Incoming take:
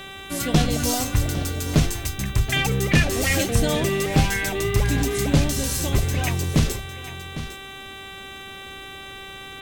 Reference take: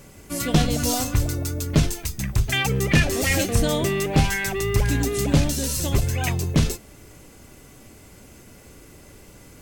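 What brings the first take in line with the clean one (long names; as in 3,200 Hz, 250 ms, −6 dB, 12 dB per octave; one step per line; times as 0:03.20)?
hum removal 388.8 Hz, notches 10
echo removal 805 ms −13.5 dB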